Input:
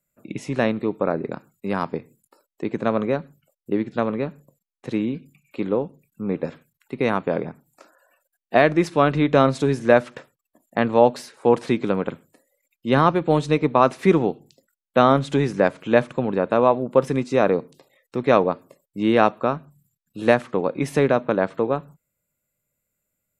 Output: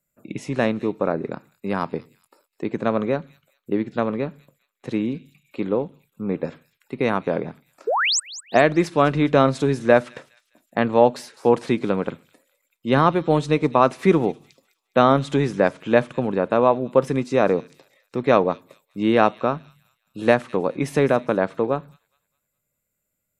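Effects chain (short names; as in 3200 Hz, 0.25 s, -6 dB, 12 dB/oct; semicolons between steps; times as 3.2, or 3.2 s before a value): painted sound rise, 7.87–8.2, 390–8700 Hz -20 dBFS; thin delay 0.206 s, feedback 37%, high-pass 3500 Hz, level -14 dB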